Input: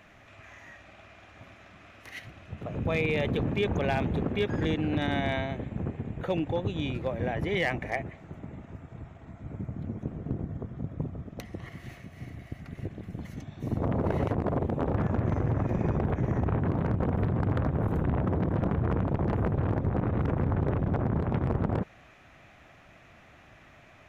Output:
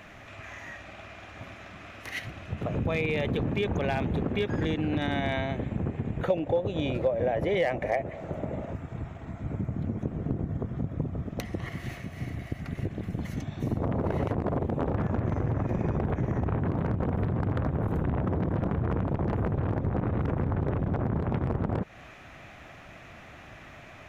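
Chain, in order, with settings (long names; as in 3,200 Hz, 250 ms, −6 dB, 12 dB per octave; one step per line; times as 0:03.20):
0:06.30–0:08.73: parametric band 570 Hz +13 dB 0.77 octaves
downward compressor 3 to 1, threshold −34 dBFS, peak gain reduction 14.5 dB
level +7 dB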